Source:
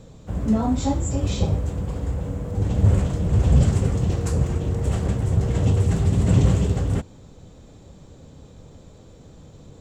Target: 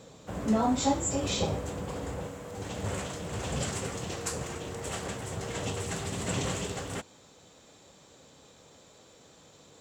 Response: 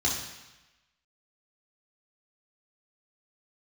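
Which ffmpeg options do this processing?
-af "asetnsamples=n=441:p=0,asendcmd='2.27 highpass f 1300',highpass=f=560:p=1,volume=2.5dB"

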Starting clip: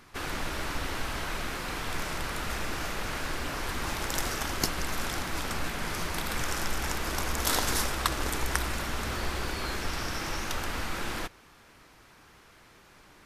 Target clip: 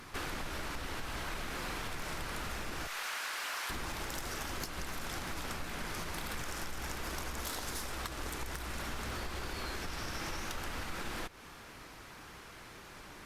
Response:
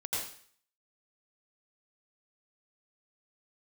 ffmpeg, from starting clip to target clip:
-filter_complex "[0:a]asettb=1/sr,asplit=3[a][b][c];[a]atrim=end=2.874[d];[b]atrim=start=2.87:end=3.7,asetpts=PTS-STARTPTS,afade=t=in:d=0.004:c=qsin,afade=t=out:st=0.826:d=0.004:c=qsin,highpass=1k[e];[c]atrim=start=3.696[f];[d][e]acrossfade=d=0.004:c1=hsin:c2=qsin[g];[g][f]acrossfade=d=0.004:c1=qsin:c2=hsin,acompressor=threshold=-39dB:ratio=16,asoftclip=type=tanh:threshold=-33.5dB,volume=5dB" -ar 48000 -c:a libopus -b:a 64k

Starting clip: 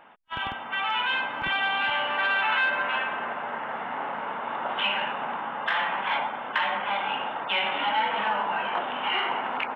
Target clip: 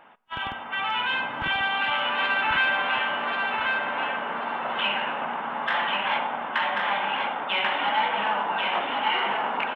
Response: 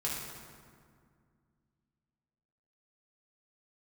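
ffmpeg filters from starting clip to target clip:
-filter_complex "[0:a]asettb=1/sr,asplit=3[a][b][c];[a]atrim=end=0.784[d];[b]atrim=start=0.78:end=1.45,asetpts=PTS-STARTPTS,afade=t=in:d=0.004:c=qsin,afade=t=out:st=0.666:d=0.004:c=qsin,lowshelf=f=160:g=11[e];[c]atrim=start=1.446[f];[d][e]acrossfade=d=0.004:c1=hsin:c2=qsin[g];[g][f]acrossfade=d=0.004:c1=qsin:c2=hsin,aecho=1:1:1088|2176|3264|4352:0.668|0.194|0.0562|0.0163,asplit=2[h][i];[1:a]atrim=start_sample=2205,adelay=38[j];[i][j]afir=irnorm=-1:irlink=0,volume=-25.5dB[k];[h][k]amix=inputs=2:normalize=0"

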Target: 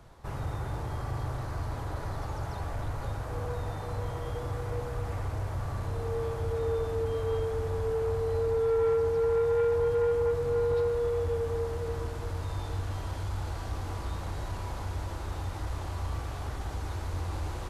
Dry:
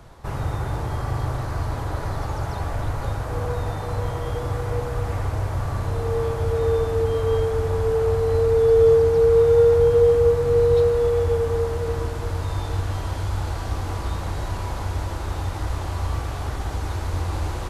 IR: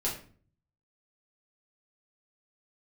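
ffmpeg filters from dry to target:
-af "asoftclip=type=tanh:threshold=-14.5dB,volume=-7.5dB"

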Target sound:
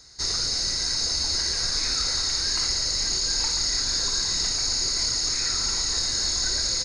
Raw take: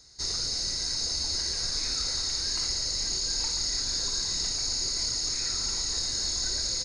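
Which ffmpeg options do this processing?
-af "equalizer=f=1.5k:w=0.9:g=4.5,volume=4dB"

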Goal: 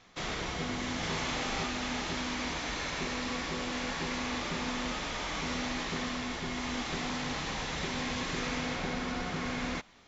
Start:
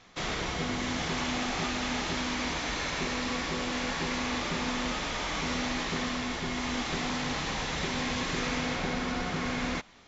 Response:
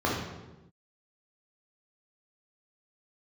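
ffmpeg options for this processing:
-filter_complex "[0:a]asettb=1/sr,asplit=3[a][b][c];[a]atrim=end=0.994[d];[b]atrim=start=0.99:end=1.63,asetpts=PTS-STARTPTS,afade=t=in:d=0.004:c=qsin,afade=t=out:st=0.636:d=0.004:c=qsin,asplit=2[e][f];[f]adelay=38,volume=-3dB[g];[e][g]amix=inputs=2:normalize=0,atrim=end_sample=28224[h];[c]atrim=start=1.626[i];[d][h]acrossfade=d=0.004:c1=hsin:c2=qsin[j];[j][i]acrossfade=d=0.004:c1=qsin:c2=hsin,volume=-3dB"

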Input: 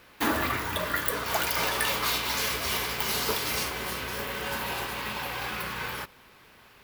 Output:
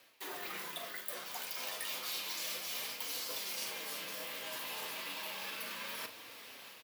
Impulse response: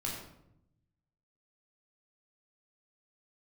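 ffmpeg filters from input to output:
-filter_complex "[0:a]dynaudnorm=f=290:g=3:m=5dB,equalizer=f=1.3k:w=0.99:g=-8.5,areverse,acompressor=threshold=-44dB:ratio=4,areverse,flanger=delay=4.4:depth=7.2:regen=-28:speed=0.32:shape=triangular,afreqshift=72,highpass=f=910:p=1,asplit=2[a][b];[b]adelay=41,volume=-11dB[c];[a][c]amix=inputs=2:normalize=0,volume=7dB"

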